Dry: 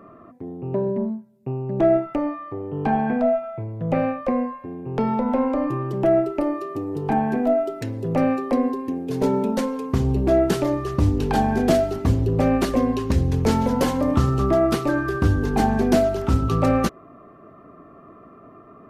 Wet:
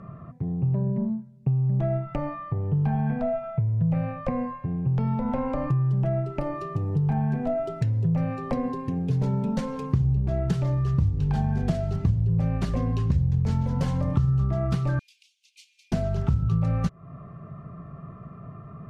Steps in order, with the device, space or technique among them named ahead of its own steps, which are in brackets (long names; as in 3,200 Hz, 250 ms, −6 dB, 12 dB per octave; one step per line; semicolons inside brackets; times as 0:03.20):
jukebox (low-pass filter 7,800 Hz 12 dB per octave; low shelf with overshoot 210 Hz +11.5 dB, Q 3; downward compressor 4 to 1, threshold −22 dBFS, peak gain reduction 18.5 dB)
0:14.99–0:15.92: Butterworth high-pass 2,300 Hz 96 dB per octave
level −1 dB